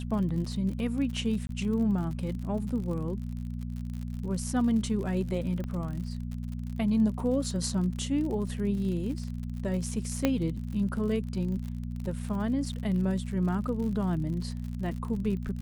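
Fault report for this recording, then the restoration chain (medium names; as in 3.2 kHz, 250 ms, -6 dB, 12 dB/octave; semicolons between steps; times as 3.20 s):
crackle 58 per s -36 dBFS
hum 60 Hz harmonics 4 -35 dBFS
1.47–1.49 s: dropout 22 ms
5.64 s: pop -25 dBFS
10.25 s: pop -11 dBFS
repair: de-click; de-hum 60 Hz, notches 4; interpolate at 1.47 s, 22 ms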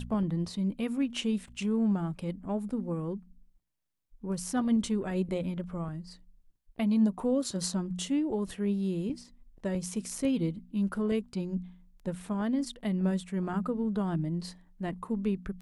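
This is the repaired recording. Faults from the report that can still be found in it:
5.64 s: pop
10.25 s: pop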